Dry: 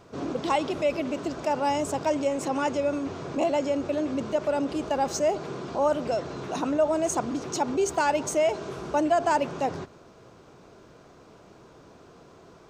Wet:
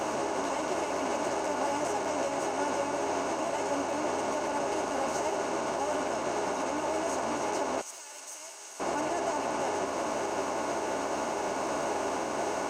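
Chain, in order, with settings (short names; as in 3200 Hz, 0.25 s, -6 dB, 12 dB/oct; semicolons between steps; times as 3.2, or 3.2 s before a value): per-bin compression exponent 0.2; limiter -10.5 dBFS, peak gain reduction 7.5 dB; 7.8–8.8 differentiator; ensemble effect; gain -8.5 dB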